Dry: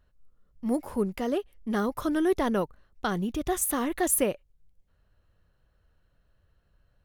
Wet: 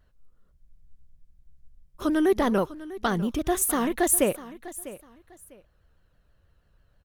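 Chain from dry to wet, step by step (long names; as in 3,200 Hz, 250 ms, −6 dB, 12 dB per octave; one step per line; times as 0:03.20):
on a send: repeating echo 649 ms, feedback 24%, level −16.5 dB
on the sum: frozen spectrum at 0:00.59, 1.43 s
pitch modulation by a square or saw wave saw down 6.2 Hz, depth 100 cents
level +3 dB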